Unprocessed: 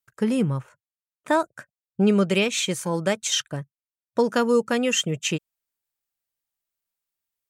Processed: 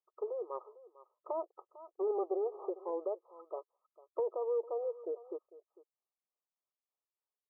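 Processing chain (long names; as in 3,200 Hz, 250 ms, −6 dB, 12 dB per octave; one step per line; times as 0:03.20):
0:01.47–0:02.70: lower of the sound and its delayed copy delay 2.4 ms
amplitude tremolo 3.3 Hz, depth 60%
brickwall limiter −22 dBFS, peak gain reduction 11.5 dB
linear-phase brick-wall band-pass 340–1,300 Hz
single-tap delay 450 ms −19 dB
treble cut that deepens with the level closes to 690 Hz, closed at −32.5 dBFS
level −1 dB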